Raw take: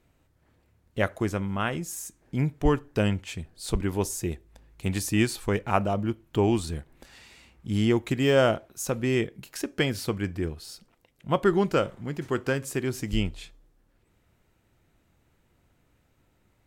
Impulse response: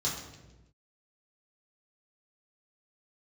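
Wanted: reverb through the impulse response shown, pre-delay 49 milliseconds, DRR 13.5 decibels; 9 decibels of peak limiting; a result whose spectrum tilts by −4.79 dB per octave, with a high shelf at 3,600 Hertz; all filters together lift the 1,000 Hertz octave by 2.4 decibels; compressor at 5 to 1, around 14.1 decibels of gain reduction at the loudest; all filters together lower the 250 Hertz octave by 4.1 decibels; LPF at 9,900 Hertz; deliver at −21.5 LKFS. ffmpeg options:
-filter_complex "[0:a]lowpass=9900,equalizer=frequency=250:width_type=o:gain=-6,equalizer=frequency=1000:width_type=o:gain=4,highshelf=frequency=3600:gain=-3.5,acompressor=threshold=-33dB:ratio=5,alimiter=level_in=4.5dB:limit=-24dB:level=0:latency=1,volume=-4.5dB,asplit=2[link_01][link_02];[1:a]atrim=start_sample=2205,adelay=49[link_03];[link_02][link_03]afir=irnorm=-1:irlink=0,volume=-19.5dB[link_04];[link_01][link_04]amix=inputs=2:normalize=0,volume=19dB"

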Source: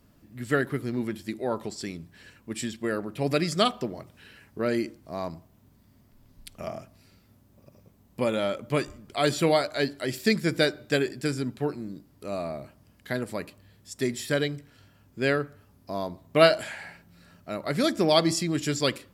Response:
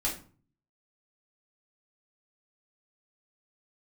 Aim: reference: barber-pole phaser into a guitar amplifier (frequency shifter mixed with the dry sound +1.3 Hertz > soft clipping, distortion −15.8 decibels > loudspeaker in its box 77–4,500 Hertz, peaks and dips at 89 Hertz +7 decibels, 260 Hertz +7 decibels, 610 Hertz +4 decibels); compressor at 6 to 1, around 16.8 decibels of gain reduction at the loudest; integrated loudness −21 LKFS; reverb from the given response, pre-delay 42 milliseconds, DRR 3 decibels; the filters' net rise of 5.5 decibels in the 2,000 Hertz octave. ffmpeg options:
-filter_complex "[0:a]equalizer=frequency=2000:width_type=o:gain=7,acompressor=threshold=-29dB:ratio=6,asplit=2[link_01][link_02];[1:a]atrim=start_sample=2205,adelay=42[link_03];[link_02][link_03]afir=irnorm=-1:irlink=0,volume=-9dB[link_04];[link_01][link_04]amix=inputs=2:normalize=0,asplit=2[link_05][link_06];[link_06]afreqshift=1.3[link_07];[link_05][link_07]amix=inputs=2:normalize=1,asoftclip=threshold=-28dB,highpass=77,equalizer=frequency=89:width_type=q:width=4:gain=7,equalizer=frequency=260:width_type=q:width=4:gain=7,equalizer=frequency=610:width_type=q:width=4:gain=4,lowpass=frequency=4500:width=0.5412,lowpass=frequency=4500:width=1.3066,volume=15dB"

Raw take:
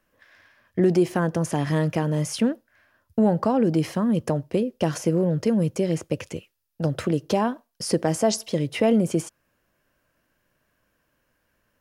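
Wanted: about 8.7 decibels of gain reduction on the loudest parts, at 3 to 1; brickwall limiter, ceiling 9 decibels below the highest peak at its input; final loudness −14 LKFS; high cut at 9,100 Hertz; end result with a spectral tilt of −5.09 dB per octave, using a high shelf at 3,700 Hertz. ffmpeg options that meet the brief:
ffmpeg -i in.wav -af "lowpass=9100,highshelf=frequency=3700:gain=4,acompressor=threshold=-27dB:ratio=3,volume=20dB,alimiter=limit=-3.5dB:level=0:latency=1" out.wav

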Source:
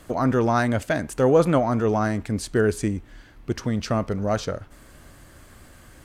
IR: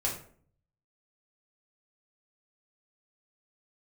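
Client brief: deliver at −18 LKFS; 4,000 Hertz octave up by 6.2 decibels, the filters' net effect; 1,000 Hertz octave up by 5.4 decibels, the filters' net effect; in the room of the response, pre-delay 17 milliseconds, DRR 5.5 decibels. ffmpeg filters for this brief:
-filter_complex "[0:a]equalizer=frequency=1000:width_type=o:gain=7,equalizer=frequency=4000:width_type=o:gain=7.5,asplit=2[link_01][link_02];[1:a]atrim=start_sample=2205,adelay=17[link_03];[link_02][link_03]afir=irnorm=-1:irlink=0,volume=-11dB[link_04];[link_01][link_04]amix=inputs=2:normalize=0,volume=1.5dB"

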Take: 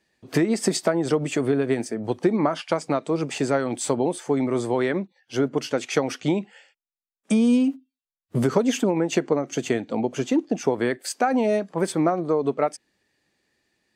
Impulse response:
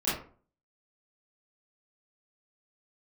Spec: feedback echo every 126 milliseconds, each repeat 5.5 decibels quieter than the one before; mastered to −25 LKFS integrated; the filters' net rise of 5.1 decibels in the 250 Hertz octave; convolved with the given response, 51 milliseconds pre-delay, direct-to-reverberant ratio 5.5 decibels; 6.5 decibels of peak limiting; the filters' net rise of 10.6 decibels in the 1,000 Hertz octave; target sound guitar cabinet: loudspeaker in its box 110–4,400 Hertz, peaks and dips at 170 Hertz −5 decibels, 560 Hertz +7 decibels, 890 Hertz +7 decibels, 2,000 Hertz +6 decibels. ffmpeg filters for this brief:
-filter_complex "[0:a]equalizer=frequency=250:width_type=o:gain=6,equalizer=frequency=1000:width_type=o:gain=8,alimiter=limit=-9.5dB:level=0:latency=1,aecho=1:1:126|252|378|504|630|756|882:0.531|0.281|0.149|0.079|0.0419|0.0222|0.0118,asplit=2[link_01][link_02];[1:a]atrim=start_sample=2205,adelay=51[link_03];[link_02][link_03]afir=irnorm=-1:irlink=0,volume=-15dB[link_04];[link_01][link_04]amix=inputs=2:normalize=0,highpass=110,equalizer=frequency=170:width_type=q:width=4:gain=-5,equalizer=frequency=560:width_type=q:width=4:gain=7,equalizer=frequency=890:width_type=q:width=4:gain=7,equalizer=frequency=2000:width_type=q:width=4:gain=6,lowpass=frequency=4400:width=0.5412,lowpass=frequency=4400:width=1.3066,volume=-8.5dB"

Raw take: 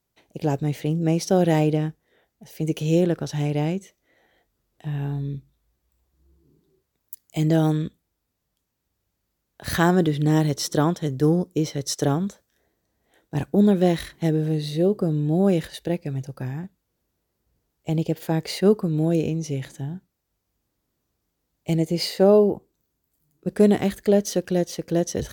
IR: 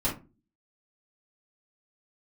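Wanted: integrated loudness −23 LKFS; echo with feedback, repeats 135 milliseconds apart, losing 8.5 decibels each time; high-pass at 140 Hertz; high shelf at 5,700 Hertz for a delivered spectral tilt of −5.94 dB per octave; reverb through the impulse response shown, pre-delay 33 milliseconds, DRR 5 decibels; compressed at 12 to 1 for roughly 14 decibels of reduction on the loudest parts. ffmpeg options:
-filter_complex "[0:a]highpass=140,highshelf=frequency=5700:gain=4.5,acompressor=threshold=-25dB:ratio=12,aecho=1:1:135|270|405|540:0.376|0.143|0.0543|0.0206,asplit=2[link_01][link_02];[1:a]atrim=start_sample=2205,adelay=33[link_03];[link_02][link_03]afir=irnorm=-1:irlink=0,volume=-13dB[link_04];[link_01][link_04]amix=inputs=2:normalize=0,volume=5dB"

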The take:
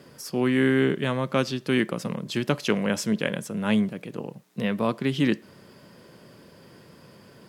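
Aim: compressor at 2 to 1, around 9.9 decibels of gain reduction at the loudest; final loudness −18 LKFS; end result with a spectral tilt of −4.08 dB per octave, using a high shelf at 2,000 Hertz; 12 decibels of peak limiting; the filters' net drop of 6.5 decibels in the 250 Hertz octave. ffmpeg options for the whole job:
ffmpeg -i in.wav -af "equalizer=frequency=250:width_type=o:gain=-8,highshelf=frequency=2000:gain=3,acompressor=threshold=-38dB:ratio=2,volume=21.5dB,alimiter=limit=-5dB:level=0:latency=1" out.wav

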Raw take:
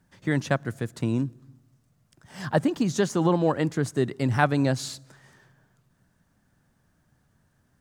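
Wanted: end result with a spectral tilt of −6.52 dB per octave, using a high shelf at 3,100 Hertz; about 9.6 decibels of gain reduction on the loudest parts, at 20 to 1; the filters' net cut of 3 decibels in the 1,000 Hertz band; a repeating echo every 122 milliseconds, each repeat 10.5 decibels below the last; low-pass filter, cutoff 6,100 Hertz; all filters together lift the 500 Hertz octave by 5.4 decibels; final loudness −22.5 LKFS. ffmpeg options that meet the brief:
ffmpeg -i in.wav -af "lowpass=6100,equalizer=frequency=500:width_type=o:gain=9,equalizer=frequency=1000:width_type=o:gain=-8.5,highshelf=frequency=3100:gain=-7,acompressor=threshold=-23dB:ratio=20,aecho=1:1:122|244|366:0.299|0.0896|0.0269,volume=7.5dB" out.wav

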